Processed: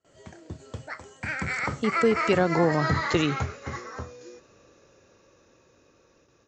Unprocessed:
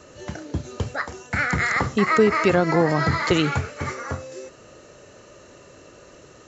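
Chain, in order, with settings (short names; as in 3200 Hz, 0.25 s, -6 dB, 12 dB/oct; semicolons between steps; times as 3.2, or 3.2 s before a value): Doppler pass-by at 2.71, 28 m/s, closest 26 m; gate with hold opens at -49 dBFS; gain -3 dB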